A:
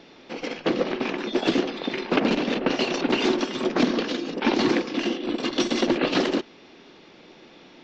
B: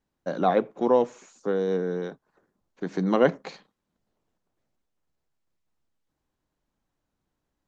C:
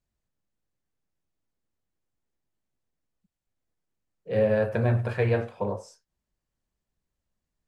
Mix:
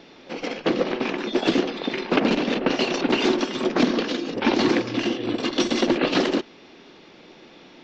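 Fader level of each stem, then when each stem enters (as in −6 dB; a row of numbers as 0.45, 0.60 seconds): +1.5, −19.0, −16.0 decibels; 0.00, 0.00, 0.00 seconds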